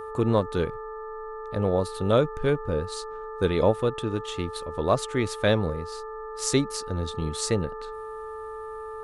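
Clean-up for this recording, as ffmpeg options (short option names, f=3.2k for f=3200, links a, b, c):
-af "bandreject=f=437.5:t=h:w=4,bandreject=f=875:t=h:w=4,bandreject=f=1.3125k:t=h:w=4,bandreject=f=1.75k:t=h:w=4,bandreject=f=1.2k:w=30"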